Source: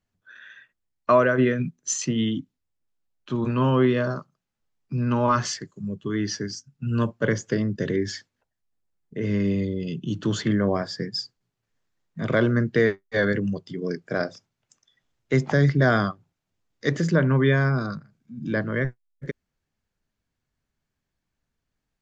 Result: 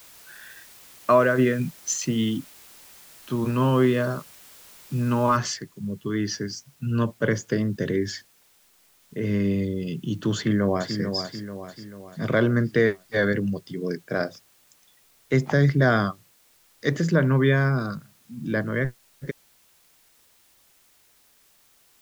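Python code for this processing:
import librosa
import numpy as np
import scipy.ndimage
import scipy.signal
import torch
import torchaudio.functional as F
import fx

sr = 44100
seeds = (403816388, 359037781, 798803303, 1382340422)

y = fx.noise_floor_step(x, sr, seeds[0], at_s=5.37, before_db=-49, after_db=-60, tilt_db=0.0)
y = fx.echo_throw(y, sr, start_s=10.36, length_s=0.63, ms=440, feedback_pct=50, wet_db=-7.5)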